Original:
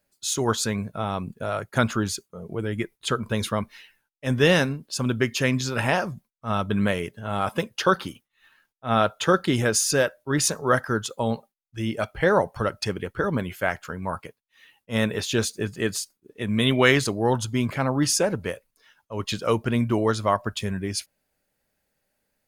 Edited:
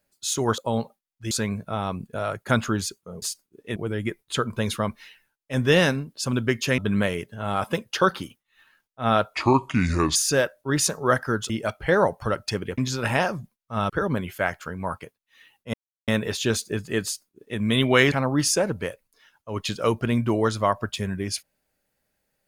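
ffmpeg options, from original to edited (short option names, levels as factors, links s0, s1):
-filter_complex "[0:a]asplit=13[s0][s1][s2][s3][s4][s5][s6][s7][s8][s9][s10][s11][s12];[s0]atrim=end=0.582[s13];[s1]atrim=start=11.108:end=11.842[s14];[s2]atrim=start=0.578:end=2.492[s15];[s3]atrim=start=15.928:end=16.472[s16];[s4]atrim=start=2.488:end=5.512[s17];[s5]atrim=start=6.628:end=9.194[s18];[s6]atrim=start=9.19:end=9.77,asetpts=PTS-STARTPTS,asetrate=31311,aresample=44100,atrim=end_sample=36025,asetpts=PTS-STARTPTS[s19];[s7]atrim=start=9.766:end=11.112[s20];[s8]atrim=start=11.838:end=13.122[s21];[s9]atrim=start=5.508:end=6.632[s22];[s10]atrim=start=13.118:end=14.96,asetpts=PTS-STARTPTS,afade=t=out:st=1.838:d=0.004:c=hsin,apad=pad_dur=0.34[s23];[s11]atrim=start=14.96:end=17.002,asetpts=PTS-STARTPTS,afade=t=in:d=0.004:c=hsin[s24];[s12]atrim=start=17.748[s25];[s13][s14]acrossfade=d=0.004:c1=hsin:c2=hsin[s26];[s26][s15]acrossfade=d=0.004:c1=hsin:c2=hsin[s27];[s27][s16]acrossfade=d=0.004:c1=hsin:c2=hsin[s28];[s28][s17]acrossfade=d=0.004:c1=hsin:c2=hsin[s29];[s29][s18]acrossfade=d=0.004:c1=hsin:c2=hsin[s30];[s30][s19]acrossfade=d=0.004:c1=hsin:c2=hsin[s31];[s31][s20]acrossfade=d=0.004:c1=hsin:c2=hsin[s32];[s32][s21]acrossfade=d=0.004:c1=hsin:c2=hsin[s33];[s33][s22]acrossfade=d=0.004:c1=hsin:c2=hsin[s34];[s23][s24]concat=n=2:v=0:a=1[s35];[s34][s35]acrossfade=d=0.004:c1=hsin:c2=hsin[s36];[s36][s25]acrossfade=d=0.004:c1=hsin:c2=hsin"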